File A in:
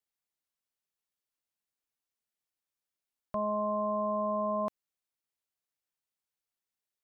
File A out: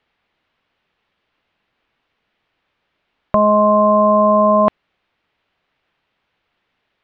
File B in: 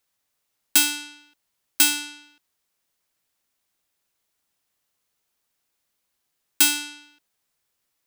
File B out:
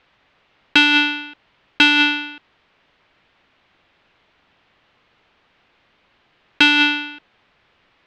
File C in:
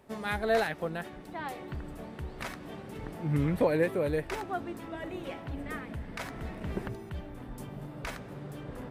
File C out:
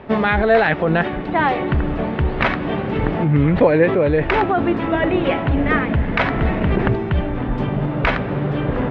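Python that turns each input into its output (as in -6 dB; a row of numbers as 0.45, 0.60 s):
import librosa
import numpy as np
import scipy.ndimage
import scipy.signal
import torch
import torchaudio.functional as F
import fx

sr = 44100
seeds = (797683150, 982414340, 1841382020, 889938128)

p1 = scipy.signal.sosfilt(scipy.signal.butter(4, 3200.0, 'lowpass', fs=sr, output='sos'), x)
p2 = fx.over_compress(p1, sr, threshold_db=-36.0, ratio=-0.5)
p3 = p1 + (p2 * 10.0 ** (2.0 / 20.0))
y = librosa.util.normalize(p3) * 10.0 ** (-1.5 / 20.0)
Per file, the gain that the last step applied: +15.5, +12.0, +12.0 dB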